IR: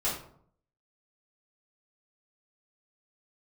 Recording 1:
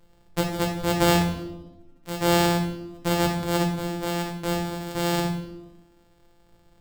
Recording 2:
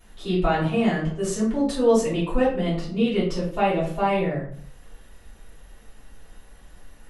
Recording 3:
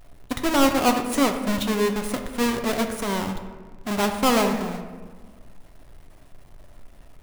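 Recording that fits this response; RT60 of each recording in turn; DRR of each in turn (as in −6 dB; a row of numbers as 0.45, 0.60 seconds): 2; 1.0, 0.60, 1.5 seconds; 0.0, −9.5, 4.5 decibels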